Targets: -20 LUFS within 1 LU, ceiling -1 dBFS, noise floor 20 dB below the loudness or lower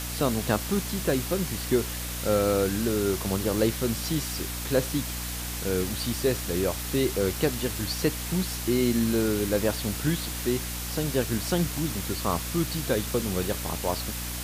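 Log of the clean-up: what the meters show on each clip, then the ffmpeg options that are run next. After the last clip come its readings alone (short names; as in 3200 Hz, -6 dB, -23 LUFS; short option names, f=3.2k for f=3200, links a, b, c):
hum 60 Hz; harmonics up to 300 Hz; hum level -34 dBFS; noise floor -34 dBFS; noise floor target -47 dBFS; loudness -27.0 LUFS; peak -9.5 dBFS; loudness target -20.0 LUFS
-> -af "bandreject=f=60:t=h:w=4,bandreject=f=120:t=h:w=4,bandreject=f=180:t=h:w=4,bandreject=f=240:t=h:w=4,bandreject=f=300:t=h:w=4"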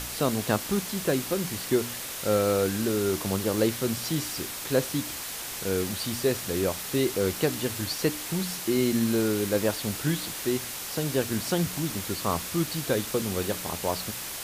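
hum none; noise floor -36 dBFS; noise floor target -48 dBFS
-> -af "afftdn=nr=12:nf=-36"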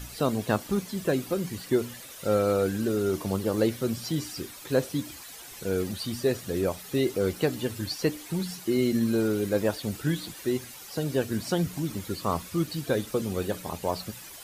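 noise floor -44 dBFS; noise floor target -49 dBFS
-> -af "afftdn=nr=6:nf=-44"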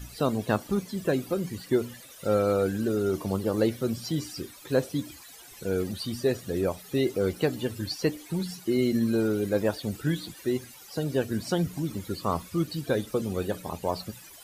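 noise floor -48 dBFS; noise floor target -49 dBFS
-> -af "afftdn=nr=6:nf=-48"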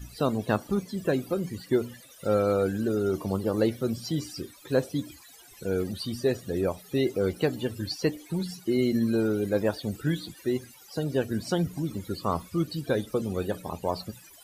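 noise floor -52 dBFS; loudness -29.0 LUFS; peak -11.0 dBFS; loudness target -20.0 LUFS
-> -af "volume=9dB"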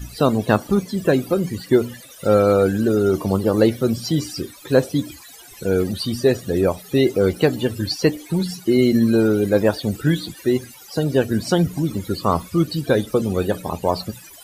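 loudness -20.0 LUFS; peak -2.0 dBFS; noise floor -43 dBFS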